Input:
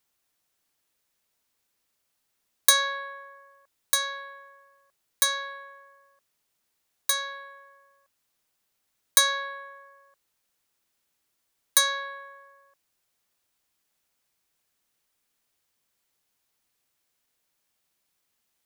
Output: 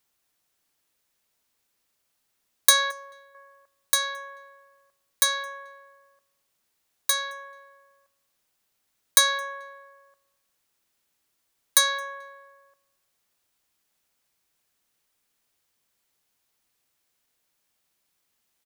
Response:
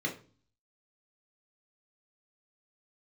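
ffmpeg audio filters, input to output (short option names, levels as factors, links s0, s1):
-filter_complex "[0:a]asettb=1/sr,asplit=3[s0][s1][s2];[s0]atrim=end=2.914[s3];[s1]atrim=start=2.91:end=3.35,asetpts=PTS-STARTPTS,afade=t=in:d=0.004:c=qsin,afade=t=out:st=0.436:d=0.004:c=qsin,equalizer=f=125:t=o:w=1:g=7,equalizer=f=250:t=o:w=1:g=-5,equalizer=f=500:t=o:w=1:g=-5,equalizer=f=1000:t=o:w=1:g=-5,equalizer=f=2000:t=o:w=1:g=-10[s4];[s2]atrim=start=3.346[s5];[s3][s4]acrossfade=d=0.004:c1=hsin:c2=qsin[s6];[s6][s5]acrossfade=d=0.004:c1=qsin:c2=hsin,asplit=2[s7][s8];[s8]adelay=218,lowpass=f=3100:p=1,volume=0.0841,asplit=2[s9][s10];[s10]adelay=218,lowpass=f=3100:p=1,volume=0.3[s11];[s7][s9][s11]amix=inputs=3:normalize=0,volume=1.19"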